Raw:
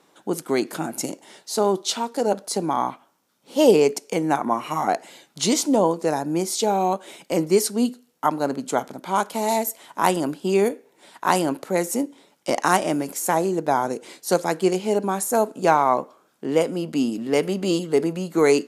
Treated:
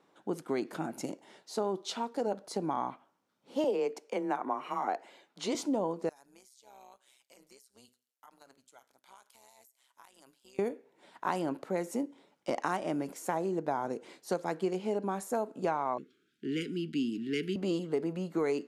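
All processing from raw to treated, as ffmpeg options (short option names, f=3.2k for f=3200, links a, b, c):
-filter_complex "[0:a]asettb=1/sr,asplit=3[a][b][c];[a]atrim=end=3.644[d];[b]atrim=start=3.64:end=5.55,asetpts=PTS-STARTPTS,afade=t=in:d=0.004:c=qsin,afade=t=out:st=1.906:d=0.004:c=qsin,bass=f=250:g=-9,treble=f=4k:g=-4,afreqshift=20[e];[c]atrim=start=5.546[f];[d][e]acrossfade=d=0.004:c1=hsin:c2=qsin[g];[g][f]acrossfade=d=0.004:c1=qsin:c2=hsin,asettb=1/sr,asplit=3[h][i][j];[h]atrim=end=6.094[k];[i]atrim=start=6.09:end=10.59,asetpts=PTS-STARTPTS,afade=t=in:d=0.004:c=qsin,afade=t=out:st=4.496:d=0.004:c=qsin,aderivative,tremolo=f=130:d=0.75,acompressor=threshold=-40dB:ratio=16:attack=3.2:release=140:knee=1:detection=peak[l];[j]atrim=start=10.586[m];[k][l]acrossfade=d=0.004:c1=hsin:c2=qsin[n];[n][m]acrossfade=d=0.004:c1=qsin:c2=hsin,asettb=1/sr,asplit=3[o][p][q];[o]atrim=end=15.984[r];[p]atrim=start=15.98:end=17.56,asetpts=PTS-STARTPTS,afade=t=in:d=0.004:c=qsin,afade=t=out:st=1.576:d=0.004:c=qsin,asuperstop=centerf=780:order=12:qfactor=0.75,equalizer=f=3.3k:t=o:w=0.95:g=7.5[s];[q]atrim=start=17.556[t];[r][s]acrossfade=d=0.004:c1=hsin:c2=qsin[u];[u][t]acrossfade=d=0.004:c1=qsin:c2=hsin,lowpass=f=2.5k:p=1,acompressor=threshold=-20dB:ratio=4,volume=-7.5dB"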